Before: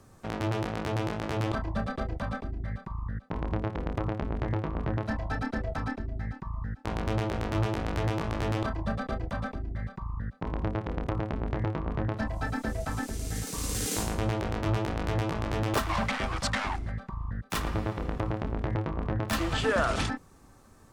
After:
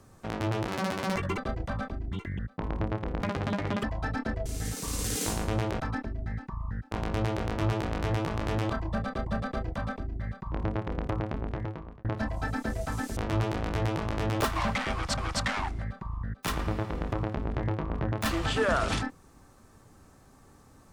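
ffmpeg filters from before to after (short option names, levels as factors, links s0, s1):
-filter_complex "[0:a]asplit=14[s0][s1][s2][s3][s4][s5][s6][s7][s8][s9][s10][s11][s12][s13];[s0]atrim=end=0.684[s14];[s1]atrim=start=0.68:end=1.9,asetpts=PTS-STARTPTS,asetrate=77175,aresample=44100[s15];[s2]atrim=start=1.896:end=2.654[s16];[s3]atrim=start=2.65:end=3.11,asetpts=PTS-STARTPTS,asetrate=77616,aresample=44100,atrim=end_sample=11526,asetpts=PTS-STARTPTS[s17];[s4]atrim=start=3.106:end=3.934[s18];[s5]atrim=start=3.93:end=5.11,asetpts=PTS-STARTPTS,asetrate=82908,aresample=44100[s19];[s6]atrim=start=5.106:end=5.732[s20];[s7]atrim=start=13.158:end=14.502[s21];[s8]atrim=start=5.728:end=9.202[s22];[s9]atrim=start=8.818:end=10.072[s23];[s10]atrim=start=10.508:end=12.04,asetpts=PTS-STARTPTS,afade=t=out:st=0.532:d=1:c=qsin[s24];[s11]atrim=start=12.04:end=13.162,asetpts=PTS-STARTPTS,afade=t=in:d=0.004:c=hsin[s25];[s12]atrim=start=14.498:end=16.512[s26];[s13]atrim=start=16.248[s27];[s14][s15]acrossfade=d=0.004:c1=hsin:c2=hsin[s28];[s28][s16]acrossfade=d=0.004:c1=hsin:c2=hsin[s29];[s29][s17]acrossfade=d=0.004:c1=hsin:c2=hsin[s30];[s30][s18]acrossfade=d=0.004:c1=hsin:c2=hsin[s31];[s31][s19]acrossfade=d=0.004:c1=hsin:c2=hsin[s32];[s32][s20]acrossfade=d=0.004:c1=hsin:c2=hsin[s33];[s33][s21]acrossfade=d=0.004:c1=hsin:c2=hsin[s34];[s34][s22]acrossfade=d=0.004:c1=hsin:c2=hsin[s35];[s35][s23]acrossfade=d=0.004:c1=hsin:c2=hsin[s36];[s24][s25]concat=n=2:v=0:a=1[s37];[s36][s37]acrossfade=d=0.004:c1=hsin:c2=hsin[s38];[s38][s26]acrossfade=d=0.004:c1=hsin:c2=hsin[s39];[s39][s27]acrossfade=d=0.004:c1=hsin:c2=hsin"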